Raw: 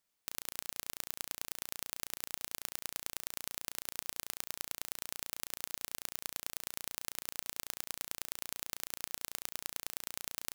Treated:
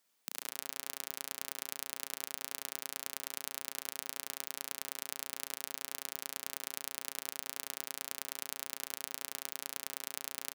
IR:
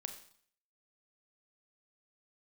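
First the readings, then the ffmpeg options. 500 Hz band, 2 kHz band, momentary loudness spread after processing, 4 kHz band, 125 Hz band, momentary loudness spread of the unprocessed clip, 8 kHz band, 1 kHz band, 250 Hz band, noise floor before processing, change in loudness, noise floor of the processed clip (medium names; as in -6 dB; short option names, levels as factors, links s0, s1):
+2.0 dB, +1.0 dB, 1 LU, +0.5 dB, -9.5 dB, 1 LU, +0.5 dB, +1.5 dB, 0.0 dB, -83 dBFS, +0.5 dB, -64 dBFS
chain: -filter_complex "[0:a]highpass=f=200:w=0.5412,highpass=f=200:w=1.3066,alimiter=limit=0.168:level=0:latency=1:release=183,asplit=2[s0][s1];[s1]adelay=76,lowpass=f=2300:p=1,volume=0.473,asplit=2[s2][s3];[s3]adelay=76,lowpass=f=2300:p=1,volume=0.54,asplit=2[s4][s5];[s5]adelay=76,lowpass=f=2300:p=1,volume=0.54,asplit=2[s6][s7];[s7]adelay=76,lowpass=f=2300:p=1,volume=0.54,asplit=2[s8][s9];[s9]adelay=76,lowpass=f=2300:p=1,volume=0.54,asplit=2[s10][s11];[s11]adelay=76,lowpass=f=2300:p=1,volume=0.54,asplit=2[s12][s13];[s13]adelay=76,lowpass=f=2300:p=1,volume=0.54[s14];[s2][s4][s6][s8][s10][s12][s14]amix=inputs=7:normalize=0[s15];[s0][s15]amix=inputs=2:normalize=0,volume=2"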